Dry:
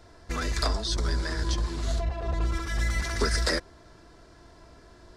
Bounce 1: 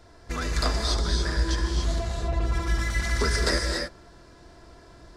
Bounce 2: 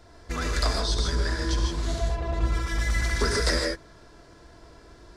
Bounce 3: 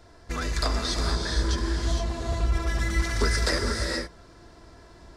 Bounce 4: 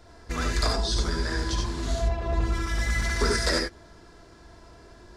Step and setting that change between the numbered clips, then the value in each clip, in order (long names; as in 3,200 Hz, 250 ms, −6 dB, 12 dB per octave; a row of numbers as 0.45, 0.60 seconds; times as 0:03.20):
reverb whose tail is shaped and stops, gate: 310, 180, 500, 110 milliseconds